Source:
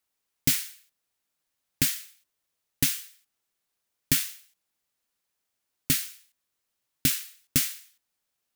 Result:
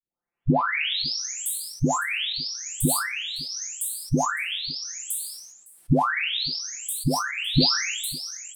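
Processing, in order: delay that grows with frequency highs late, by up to 985 ms; level rider gain up to 16 dB; distance through air 65 m; delay 558 ms -21.5 dB; decay stretcher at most 53 dB/s

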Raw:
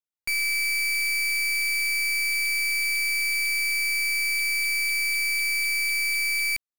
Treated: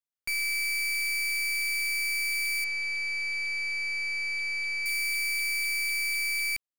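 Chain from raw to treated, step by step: 2.64–4.86 s: distance through air 110 m; trim -4 dB

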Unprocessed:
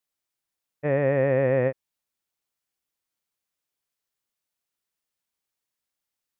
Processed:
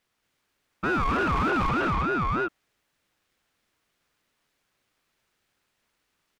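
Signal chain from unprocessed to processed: multi-tap echo 228/339/757 ms -4/-10/-9.5 dB; overdrive pedal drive 37 dB, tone 1.1 kHz, clips at -7.5 dBFS; ring modulator with a swept carrier 740 Hz, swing 25%, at 3.3 Hz; trim -7 dB

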